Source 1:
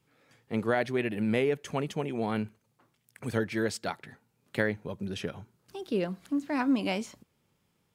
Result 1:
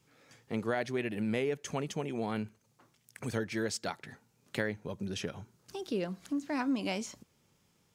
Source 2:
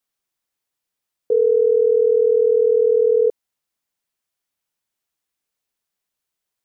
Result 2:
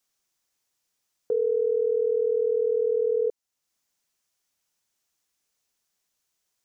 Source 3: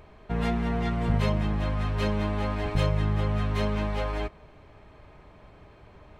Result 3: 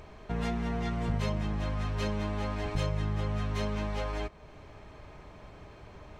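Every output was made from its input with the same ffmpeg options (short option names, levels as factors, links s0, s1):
-af "equalizer=f=6200:w=1.5:g=7,acompressor=threshold=0.00708:ratio=1.5,volume=1.26"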